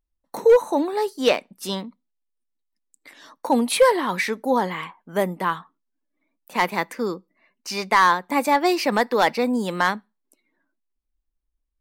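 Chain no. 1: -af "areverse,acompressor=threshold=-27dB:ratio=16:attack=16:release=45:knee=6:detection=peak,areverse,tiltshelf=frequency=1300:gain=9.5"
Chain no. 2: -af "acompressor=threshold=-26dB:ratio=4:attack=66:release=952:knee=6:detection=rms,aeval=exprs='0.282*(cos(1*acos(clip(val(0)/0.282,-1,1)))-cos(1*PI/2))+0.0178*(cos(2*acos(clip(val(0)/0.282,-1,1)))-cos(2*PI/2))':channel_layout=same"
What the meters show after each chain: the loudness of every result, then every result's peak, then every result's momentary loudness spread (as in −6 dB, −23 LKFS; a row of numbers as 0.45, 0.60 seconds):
−24.5, −30.5 LKFS; −8.5, −10.5 dBFS; 9, 12 LU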